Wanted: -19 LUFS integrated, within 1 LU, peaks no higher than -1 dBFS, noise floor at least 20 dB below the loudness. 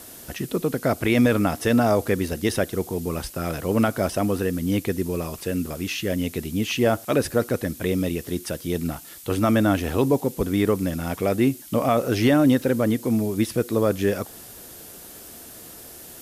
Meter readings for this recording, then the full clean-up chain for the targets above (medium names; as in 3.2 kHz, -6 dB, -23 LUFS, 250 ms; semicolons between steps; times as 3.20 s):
noise floor -43 dBFS; noise floor target -44 dBFS; loudness -23.5 LUFS; peak level -8.5 dBFS; loudness target -19.0 LUFS
-> noise reduction 6 dB, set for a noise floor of -43 dBFS; trim +4.5 dB